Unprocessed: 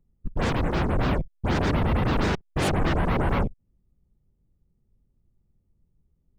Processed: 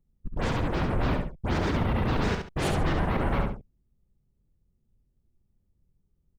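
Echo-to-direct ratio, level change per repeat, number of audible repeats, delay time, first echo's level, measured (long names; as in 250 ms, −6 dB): −4.5 dB, −11.0 dB, 2, 69 ms, −5.0 dB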